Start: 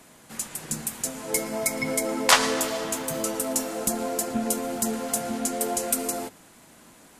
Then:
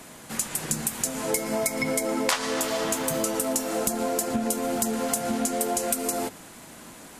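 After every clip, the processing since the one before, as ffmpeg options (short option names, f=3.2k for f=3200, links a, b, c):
-af "acompressor=threshold=-30dB:ratio=6,volume=7dB"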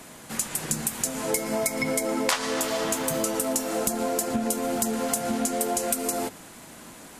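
-af anull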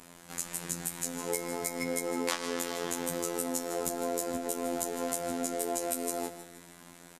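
-af "afftfilt=real='hypot(re,im)*cos(PI*b)':imag='0':win_size=2048:overlap=0.75,aecho=1:1:157|314|471|628|785:0.237|0.109|0.0502|0.0231|0.0106,volume=-4.5dB"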